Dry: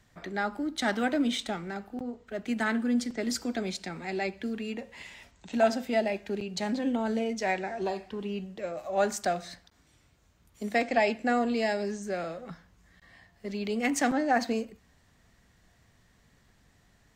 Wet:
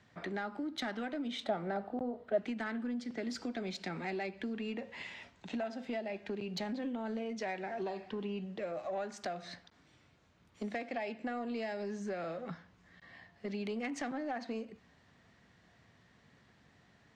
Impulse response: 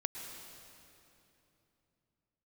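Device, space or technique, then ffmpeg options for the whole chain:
AM radio: -filter_complex "[0:a]highpass=110,lowpass=4.3k,acompressor=threshold=-35dB:ratio=10,asoftclip=type=tanh:threshold=-29dB,asettb=1/sr,asplit=3[a][b][c];[a]atrim=end=1.444[d];[b]atrim=start=1.44:end=2.38,asetpts=PTS-STARTPTS,afade=t=in:d=0.004:c=qsin,afade=t=out:st=0.936:d=0.004:c=qsin,equalizer=f=630:t=o:w=0.67:g=11,equalizer=f=2.5k:t=o:w=0.67:g=-6,equalizer=f=6.3k:t=o:w=0.67:g=-9[e];[c]atrim=start=2.376[f];[d][e]acrossfade=d=0.004:c1=hsin:c2=qsin[g];[g][f]acrossfade=d=0.004:c1=qsin:c2=hsin,volume=1dB"

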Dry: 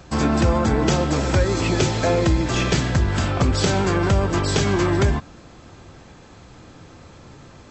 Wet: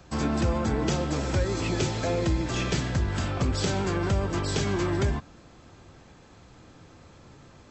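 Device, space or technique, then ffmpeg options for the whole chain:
one-band saturation: -filter_complex "[0:a]acrossover=split=500|2200[a][b][c];[b]asoftclip=type=tanh:threshold=-21.5dB[d];[a][d][c]amix=inputs=3:normalize=0,volume=-7dB"

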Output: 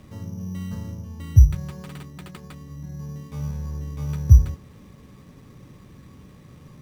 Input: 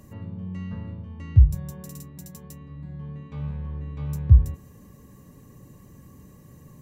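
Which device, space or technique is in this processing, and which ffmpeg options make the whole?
crushed at another speed: -af "asetrate=22050,aresample=44100,acrusher=samples=15:mix=1:aa=0.000001,asetrate=88200,aresample=44100,volume=2dB"

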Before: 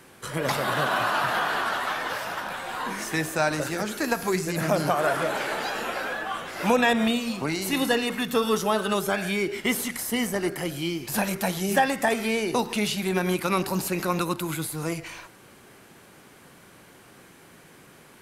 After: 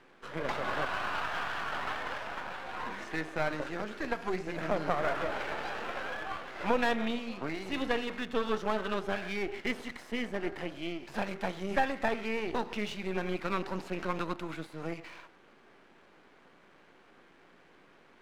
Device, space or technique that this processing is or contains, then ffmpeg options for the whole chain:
crystal radio: -filter_complex "[0:a]asettb=1/sr,asplit=3[a][b][c];[a]atrim=end=0.854[d];[b]atrim=start=0.85:end=1.73,asetpts=PTS-STARTPTS,afade=t=in:d=0.004:c=qsin,afade=t=out:st=0.876:d=0.004:c=qsin,highpass=f=920:p=1[e];[c]atrim=start=1.726[f];[d][e]acrossfade=d=0.004:c1=hsin:c2=qsin[g];[g][f]acrossfade=d=0.004:c1=qsin:c2=hsin,highpass=230,lowpass=2.8k,aeval=exprs='if(lt(val(0),0),0.251*val(0),val(0))':c=same,volume=-3.5dB"

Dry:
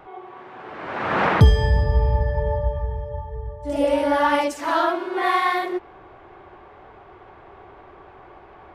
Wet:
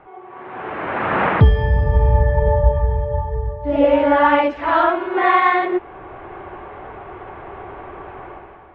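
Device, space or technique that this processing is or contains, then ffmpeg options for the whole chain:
action camera in a waterproof case: -filter_complex "[0:a]asplit=3[a][b][c];[a]afade=t=out:st=4.56:d=0.02[d];[b]asubboost=boost=8.5:cutoff=68,afade=t=in:st=4.56:d=0.02,afade=t=out:st=5.13:d=0.02[e];[c]afade=t=in:st=5.13:d=0.02[f];[d][e][f]amix=inputs=3:normalize=0,lowpass=f=2.8k:w=0.5412,lowpass=f=2.8k:w=1.3066,dynaudnorm=f=100:g=9:m=12dB,volume=-1dB" -ar 44100 -c:a aac -b:a 48k

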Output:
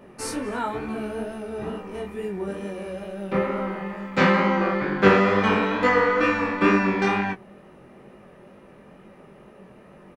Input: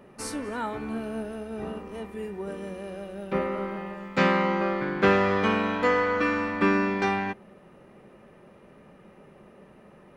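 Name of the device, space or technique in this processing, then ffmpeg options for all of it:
double-tracked vocal: -filter_complex "[0:a]asplit=2[a][b];[b]adelay=16,volume=-14dB[c];[a][c]amix=inputs=2:normalize=0,flanger=delay=19:depth=6.1:speed=2.2,volume=6.5dB"

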